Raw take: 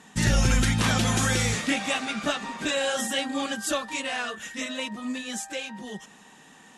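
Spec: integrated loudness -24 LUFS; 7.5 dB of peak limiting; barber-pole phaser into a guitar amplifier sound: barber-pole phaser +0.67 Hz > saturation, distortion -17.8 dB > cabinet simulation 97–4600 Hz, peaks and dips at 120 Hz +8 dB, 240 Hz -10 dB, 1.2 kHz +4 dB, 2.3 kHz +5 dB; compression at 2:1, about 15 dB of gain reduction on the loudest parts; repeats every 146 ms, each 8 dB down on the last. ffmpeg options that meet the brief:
-filter_complex "[0:a]acompressor=threshold=0.00501:ratio=2,alimiter=level_in=2.51:limit=0.0631:level=0:latency=1,volume=0.398,aecho=1:1:146|292|438|584|730:0.398|0.159|0.0637|0.0255|0.0102,asplit=2[s0][s1];[s1]afreqshift=0.67[s2];[s0][s2]amix=inputs=2:normalize=1,asoftclip=threshold=0.0133,highpass=97,equalizer=f=120:t=q:w=4:g=8,equalizer=f=240:t=q:w=4:g=-10,equalizer=f=1200:t=q:w=4:g=4,equalizer=f=2300:t=q:w=4:g=5,lowpass=f=4600:w=0.5412,lowpass=f=4600:w=1.3066,volume=11.2"

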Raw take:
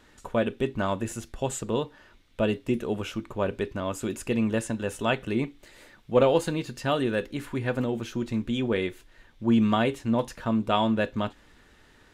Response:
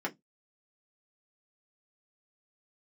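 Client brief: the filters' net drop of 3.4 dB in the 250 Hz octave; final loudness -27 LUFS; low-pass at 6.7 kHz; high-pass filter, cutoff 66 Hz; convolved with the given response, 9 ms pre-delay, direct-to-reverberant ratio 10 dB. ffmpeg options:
-filter_complex "[0:a]highpass=66,lowpass=6700,equalizer=f=250:t=o:g=-4,asplit=2[s0][s1];[1:a]atrim=start_sample=2205,adelay=9[s2];[s1][s2]afir=irnorm=-1:irlink=0,volume=0.178[s3];[s0][s3]amix=inputs=2:normalize=0,volume=1.33"

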